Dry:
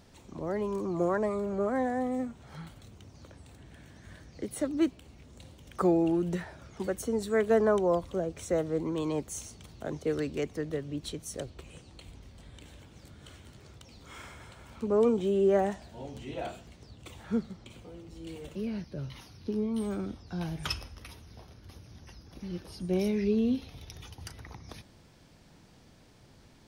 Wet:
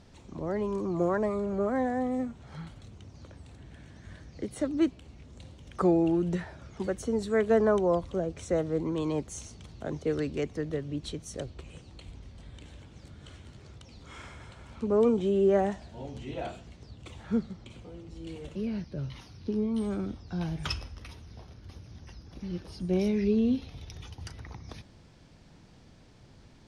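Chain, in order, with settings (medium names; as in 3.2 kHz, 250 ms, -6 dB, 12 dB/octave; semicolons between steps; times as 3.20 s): low-pass 7.7 kHz 12 dB/octave; bass shelf 190 Hz +4.5 dB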